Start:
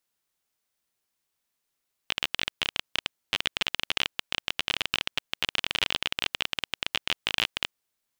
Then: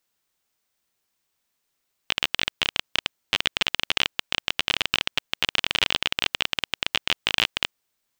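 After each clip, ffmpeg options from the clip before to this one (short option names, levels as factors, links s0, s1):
-af "equalizer=f=11000:w=7.5:g=-11,volume=1.68"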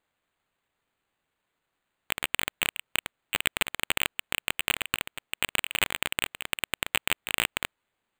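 -af "acrusher=samples=8:mix=1:aa=0.000001,volume=0.596"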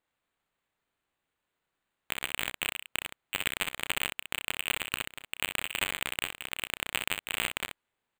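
-af "aecho=1:1:32|63:0.237|0.473,volume=0.596"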